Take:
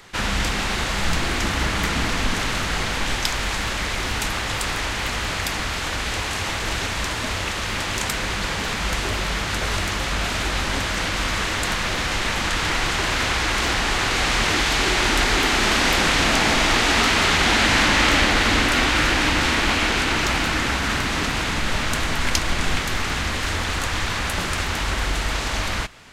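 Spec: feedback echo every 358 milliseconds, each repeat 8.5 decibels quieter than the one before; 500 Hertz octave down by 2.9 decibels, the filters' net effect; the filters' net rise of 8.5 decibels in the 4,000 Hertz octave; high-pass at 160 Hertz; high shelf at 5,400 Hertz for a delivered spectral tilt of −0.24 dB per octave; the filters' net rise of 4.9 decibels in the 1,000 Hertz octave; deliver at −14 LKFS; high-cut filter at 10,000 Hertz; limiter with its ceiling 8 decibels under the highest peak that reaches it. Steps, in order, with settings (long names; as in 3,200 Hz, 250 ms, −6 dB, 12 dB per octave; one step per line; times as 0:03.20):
high-pass filter 160 Hz
low-pass filter 10,000 Hz
parametric band 500 Hz −6.5 dB
parametric band 1,000 Hz +7 dB
parametric band 4,000 Hz +7.5 dB
high-shelf EQ 5,400 Hz +7.5 dB
brickwall limiter −5.5 dBFS
repeating echo 358 ms, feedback 38%, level −8.5 dB
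level +1.5 dB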